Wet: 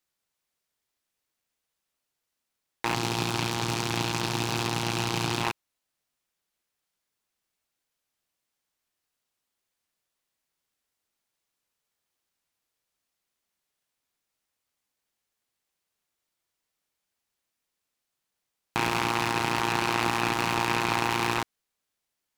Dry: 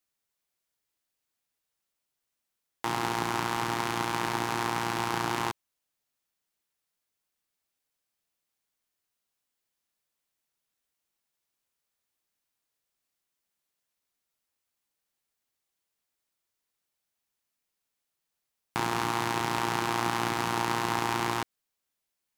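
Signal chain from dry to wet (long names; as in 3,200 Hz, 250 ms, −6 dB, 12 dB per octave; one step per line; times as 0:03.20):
loose part that buzzes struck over −39 dBFS, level −21 dBFS
0:02.94–0:05.44: octave-band graphic EQ 125/1,000/2,000/4,000 Hz +6/−4/−9/+8 dB
short delay modulated by noise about 1,400 Hz, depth 0.031 ms
level +2 dB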